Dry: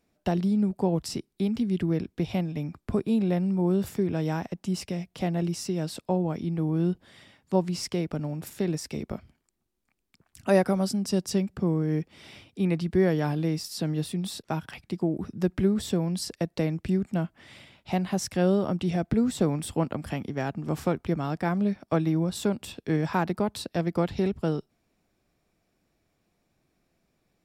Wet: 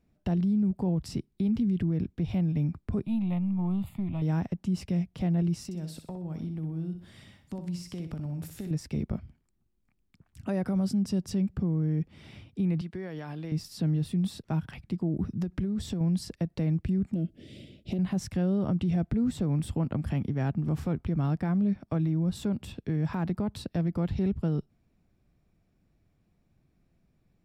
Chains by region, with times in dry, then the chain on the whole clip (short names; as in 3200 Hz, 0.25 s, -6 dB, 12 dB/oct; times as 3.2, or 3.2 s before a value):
3.06–4.22 half-wave gain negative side -3 dB + low shelf 180 Hz -7.5 dB + fixed phaser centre 1600 Hz, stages 6
5.65–8.71 high shelf 4700 Hz +11 dB + compressor, threshold -36 dBFS + flutter echo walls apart 10.7 m, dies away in 0.43 s
12.81–13.52 HPF 910 Hz 6 dB/oct + high shelf 11000 Hz -10 dB + compressor 4:1, threshold -33 dBFS
15.29–16.01 bell 5800 Hz +4.5 dB 1.4 oct + compressor 8:1, threshold -30 dBFS
17.14–17.99 EQ curve 130 Hz 0 dB, 380 Hz +13 dB, 620 Hz +4 dB, 940 Hz -25 dB, 1300 Hz -16 dB, 3100 Hz +4 dB + compressor, threshold -29 dBFS
whole clip: tone controls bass +13 dB, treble -5 dB; limiter -16.5 dBFS; gain -4.5 dB